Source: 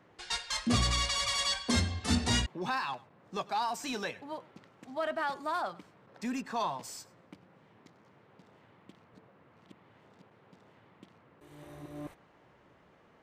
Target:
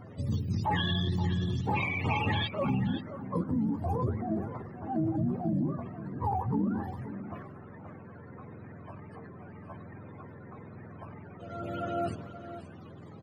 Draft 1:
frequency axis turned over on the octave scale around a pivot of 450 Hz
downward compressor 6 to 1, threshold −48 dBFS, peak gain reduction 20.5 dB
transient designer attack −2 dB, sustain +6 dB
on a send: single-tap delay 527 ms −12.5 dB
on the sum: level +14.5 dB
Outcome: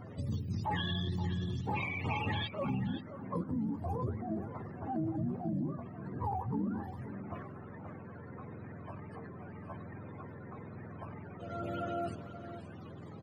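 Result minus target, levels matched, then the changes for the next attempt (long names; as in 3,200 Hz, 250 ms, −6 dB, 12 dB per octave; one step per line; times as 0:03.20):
downward compressor: peak gain reduction +5.5 dB
change: downward compressor 6 to 1, threshold −41.5 dBFS, peak gain reduction 15 dB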